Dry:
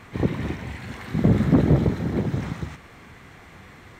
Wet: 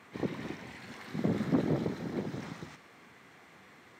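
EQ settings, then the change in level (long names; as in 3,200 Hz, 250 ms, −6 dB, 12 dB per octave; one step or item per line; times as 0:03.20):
high-pass filter 200 Hz 12 dB per octave
dynamic equaliser 5,000 Hz, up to +5 dB, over −60 dBFS, Q 2
−8.5 dB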